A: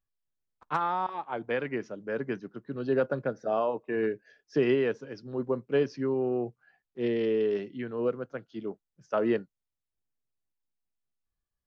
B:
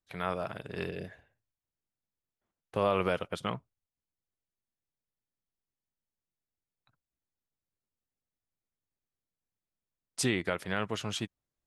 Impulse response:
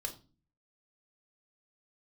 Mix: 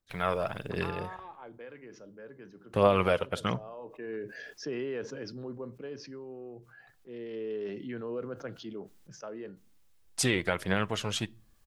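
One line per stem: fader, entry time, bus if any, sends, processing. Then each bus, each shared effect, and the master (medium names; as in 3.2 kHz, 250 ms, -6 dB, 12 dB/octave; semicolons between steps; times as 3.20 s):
-12.5 dB, 0.10 s, send -19 dB, level flattener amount 70%; auto duck -13 dB, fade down 1.70 s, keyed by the second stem
+2.0 dB, 0.00 s, send -16 dB, phaser 1.4 Hz, delay 2.2 ms, feedback 35%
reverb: on, RT60 0.35 s, pre-delay 4 ms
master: none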